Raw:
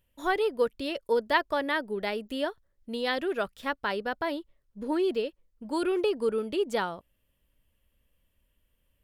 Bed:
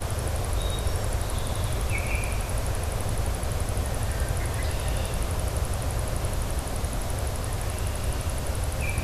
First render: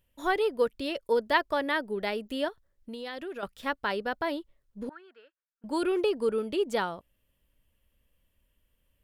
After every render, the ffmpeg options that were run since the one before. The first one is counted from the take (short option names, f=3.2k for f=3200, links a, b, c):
-filter_complex "[0:a]asettb=1/sr,asplit=3[a][b][c];[a]atrim=end=2.484[d];[b]atrim=start=2.48:end=3.43,asetpts=PTS-STARTPTS,afade=t=in:d=0.004:c=qsin,afade=t=out:st=0.946:d=0.004:c=qsin,acompressor=threshold=-37dB:ratio=3:attack=3.2:release=140:knee=1:detection=peak[e];[c]atrim=start=3.426[f];[d][e]acrossfade=d=0.004:c1=hsin:c2=qsin[g];[g][f]acrossfade=d=0.004:c1=qsin:c2=hsin,asettb=1/sr,asplit=3[h][i][j];[h]atrim=end=4.894[k];[i]atrim=start=4.89:end=5.64,asetpts=PTS-STARTPTS,afade=t=in:d=0.004:c=qsin,afade=t=out:st=0.746:d=0.004:c=qsin,bandpass=f=1.5k:t=q:w=7.8[l];[j]atrim=start=5.636[m];[k][l]acrossfade=d=0.004:c1=hsin:c2=qsin[n];[n][m]acrossfade=d=0.004:c1=qsin:c2=hsin"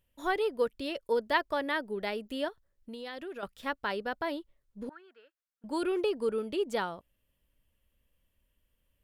-af "volume=-3dB"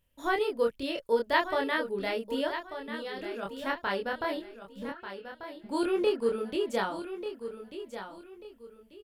-filter_complex "[0:a]asplit=2[a][b];[b]adelay=26,volume=-2dB[c];[a][c]amix=inputs=2:normalize=0,aecho=1:1:1190|2380|3570:0.299|0.0866|0.0251"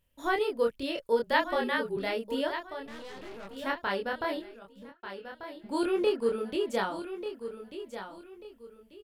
-filter_complex "[0:a]asettb=1/sr,asplit=3[a][b][c];[a]atrim=end=1.234[d];[b]atrim=start=1.23:end=1.97,asetpts=PTS-STARTPTS,afade=t=in:d=0.004:c=qsin,afade=t=out:st=0.736:d=0.004:c=qsin,afreqshift=-34[e];[c]atrim=start=1.966[f];[d][e]acrossfade=d=0.004:c1=hsin:c2=qsin[g];[g][f]acrossfade=d=0.004:c1=qsin:c2=hsin,asettb=1/sr,asplit=3[h][i][j];[h]atrim=end=2.854[k];[i]atrim=start=2.85:end=3.56,asetpts=PTS-STARTPTS,afade=t=in:d=0.004:c=qsin,afade=t=out:st=0.706:d=0.004:c=qsin,aeval=exprs='(tanh(112*val(0)+0.75)-tanh(0.75))/112':c=same[l];[j]atrim=start=3.556[m];[k][l]acrossfade=d=0.004:c1=hsin:c2=qsin[n];[n][m]acrossfade=d=0.004:c1=qsin:c2=hsin,asplit=2[o][p];[o]atrim=end=5.03,asetpts=PTS-STARTPTS,afade=t=out:st=4.47:d=0.56[q];[p]atrim=start=5.03,asetpts=PTS-STARTPTS,afade=t=in:d=0.004:c=hsin[r];[q][r]concat=n=2:v=0:a=1"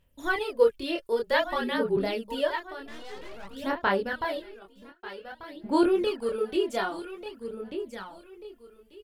-af "aphaser=in_gain=1:out_gain=1:delay=2.9:decay=0.59:speed=0.52:type=sinusoidal"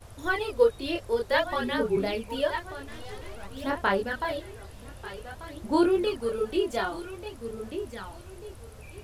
-filter_complex "[1:a]volume=-18.5dB[a];[0:a][a]amix=inputs=2:normalize=0"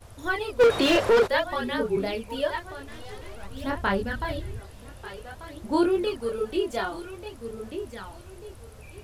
-filter_complex "[0:a]asplit=3[a][b][c];[a]afade=t=out:st=0.59:d=0.02[d];[b]asplit=2[e][f];[f]highpass=f=720:p=1,volume=34dB,asoftclip=type=tanh:threshold=-10dB[g];[e][g]amix=inputs=2:normalize=0,lowpass=f=1.6k:p=1,volume=-6dB,afade=t=in:st=0.59:d=0.02,afade=t=out:st=1.26:d=0.02[h];[c]afade=t=in:st=1.26:d=0.02[i];[d][h][i]amix=inputs=3:normalize=0,asettb=1/sr,asplit=3[j][k][l];[j]atrim=end=3.334[m];[k]atrim=start=3.33:end=4.6,asetpts=PTS-STARTPTS,afade=t=in:d=0.004:c=qsin,afade=t=out:st=1.266:d=0.004:c=qsin,asubboost=boost=9.5:cutoff=250[n];[l]atrim=start=4.596[o];[m][n]acrossfade=d=0.004:c1=hsin:c2=qsin[p];[p][o]acrossfade=d=0.004:c1=qsin:c2=hsin"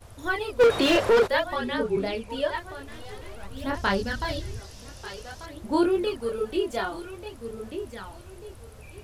-filter_complex "[0:a]asettb=1/sr,asplit=3[a][b][c];[a]atrim=end=1.554[d];[b]atrim=start=1.55:end=2.55,asetpts=PTS-STARTPTS,afade=t=in:d=0.004:c=qsin,afade=t=out:st=0.996:d=0.004:c=qsin,lowpass=10k[e];[c]atrim=start=2.546[f];[d][e]acrossfade=d=0.004:c1=hsin:c2=qsin[g];[g][f]acrossfade=d=0.004:c1=qsin:c2=hsin,asettb=1/sr,asplit=3[h][i][j];[h]atrim=end=3.744[k];[i]atrim=start=3.74:end=5.46,asetpts=PTS-STARTPTS,afade=t=in:d=0.004:c=qsin,afade=t=out:st=1.716:d=0.004:c=qsin,equalizer=f=5.6k:w=1.4:g=15[l];[j]atrim=start=5.456[m];[k][l]acrossfade=d=0.004:c1=hsin:c2=qsin[n];[n][m]acrossfade=d=0.004:c1=qsin:c2=hsin"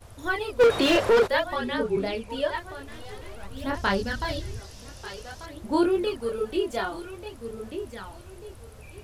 -af anull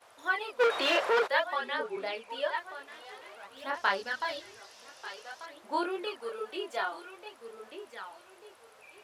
-af "highpass=740,highshelf=f=4.8k:g=-11"